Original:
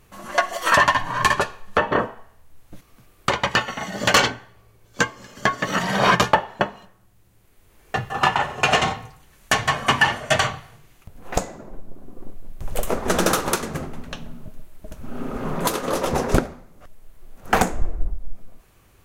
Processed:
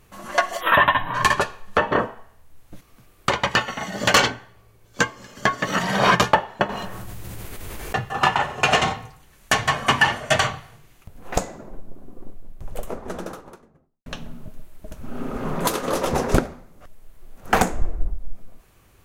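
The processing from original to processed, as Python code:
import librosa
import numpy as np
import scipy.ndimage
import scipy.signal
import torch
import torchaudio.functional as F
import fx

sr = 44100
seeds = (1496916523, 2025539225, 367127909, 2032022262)

y = fx.spec_erase(x, sr, start_s=0.61, length_s=0.53, low_hz=4000.0, high_hz=11000.0)
y = fx.env_flatten(y, sr, amount_pct=70, at=(6.69, 7.95))
y = fx.studio_fade_out(y, sr, start_s=11.59, length_s=2.47)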